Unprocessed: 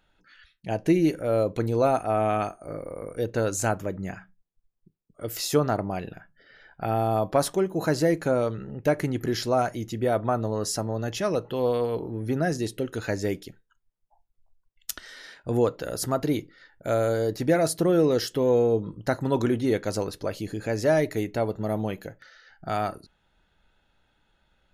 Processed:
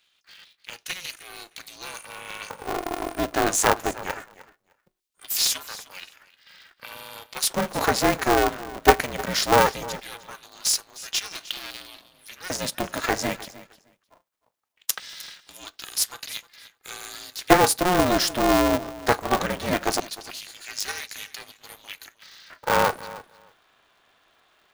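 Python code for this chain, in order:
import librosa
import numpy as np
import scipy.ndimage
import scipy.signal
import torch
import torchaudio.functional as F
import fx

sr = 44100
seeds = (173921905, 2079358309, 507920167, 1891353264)

p1 = fx.leveller(x, sr, passes=2, at=(11.31, 11.71))
p2 = fx.low_shelf(p1, sr, hz=91.0, db=-11.0)
p3 = fx.level_steps(p2, sr, step_db=19)
p4 = p2 + (p3 * 10.0 ** (1.5 / 20.0))
p5 = fx.filter_lfo_highpass(p4, sr, shape='square', hz=0.2, low_hz=650.0, high_hz=3200.0, q=1.1)
p6 = fx.hum_notches(p5, sr, base_hz=50, count=4)
p7 = p6 + fx.echo_feedback(p6, sr, ms=307, feedback_pct=15, wet_db=-18, dry=0)
p8 = p7 * np.sign(np.sin(2.0 * np.pi * 180.0 * np.arange(len(p7)) / sr))
y = p8 * 10.0 ** (4.5 / 20.0)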